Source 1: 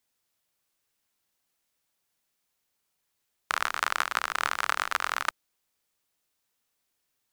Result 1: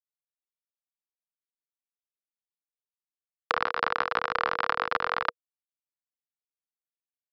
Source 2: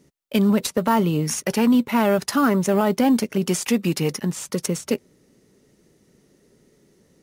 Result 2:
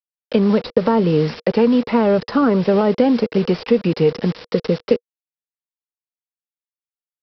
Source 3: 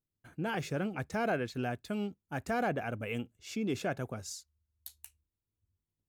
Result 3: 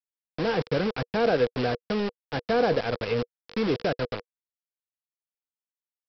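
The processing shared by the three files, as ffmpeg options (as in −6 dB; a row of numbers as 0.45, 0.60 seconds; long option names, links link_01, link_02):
-filter_complex "[0:a]aresample=11025,acrusher=bits=5:mix=0:aa=0.000001,aresample=44100,equalizer=frequency=480:width=5.3:gain=11.5,acrossover=split=520|1300[link_01][link_02][link_03];[link_01]acompressor=threshold=-19dB:ratio=4[link_04];[link_02]acompressor=threshold=-27dB:ratio=4[link_05];[link_03]acompressor=threshold=-39dB:ratio=4[link_06];[link_04][link_05][link_06]amix=inputs=3:normalize=0,volume=5.5dB"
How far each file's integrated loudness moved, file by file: +0.5, +3.5, +8.5 LU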